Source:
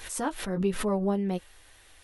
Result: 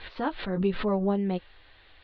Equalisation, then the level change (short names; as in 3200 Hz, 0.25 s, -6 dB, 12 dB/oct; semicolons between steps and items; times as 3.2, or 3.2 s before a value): steep low-pass 4400 Hz 72 dB/oct; +1.0 dB